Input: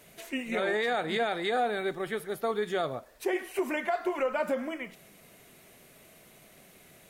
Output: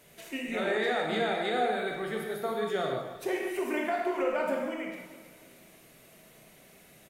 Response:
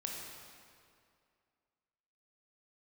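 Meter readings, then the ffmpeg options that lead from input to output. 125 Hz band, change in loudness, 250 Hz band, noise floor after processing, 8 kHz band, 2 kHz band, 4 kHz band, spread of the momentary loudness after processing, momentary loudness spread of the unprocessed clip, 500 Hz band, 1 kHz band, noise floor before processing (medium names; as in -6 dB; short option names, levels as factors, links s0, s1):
+1.5 dB, 0.0 dB, +0.5 dB, -57 dBFS, -0.5 dB, -0.5 dB, 0.0 dB, 9 LU, 7 LU, 0.0 dB, 0.0 dB, -57 dBFS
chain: -filter_complex "[0:a]aecho=1:1:313|626|939:0.158|0.0586|0.0217[s0];[1:a]atrim=start_sample=2205,afade=t=out:st=0.26:d=0.01,atrim=end_sample=11907[s1];[s0][s1]afir=irnorm=-1:irlink=0"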